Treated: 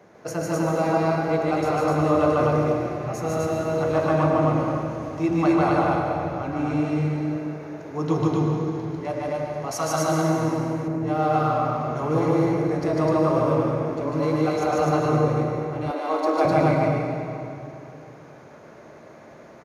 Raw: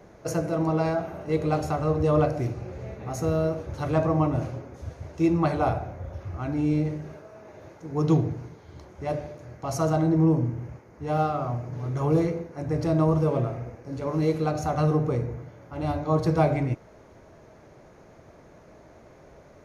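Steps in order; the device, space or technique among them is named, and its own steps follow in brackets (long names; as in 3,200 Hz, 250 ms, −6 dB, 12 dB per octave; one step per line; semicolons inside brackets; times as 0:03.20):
stadium PA (high-pass filter 130 Hz 12 dB per octave; parametric band 1,600 Hz +4 dB 2.6 octaves; loudspeakers that aren't time-aligned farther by 51 metres −1 dB, 87 metres −1 dB; convolution reverb RT60 2.8 s, pre-delay 101 ms, DRR 1.5 dB)
0:09.71–0:10.88: tilt shelving filter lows −5.5 dB
0:15.91–0:16.45: Butterworth high-pass 280 Hz 36 dB per octave
level −2.5 dB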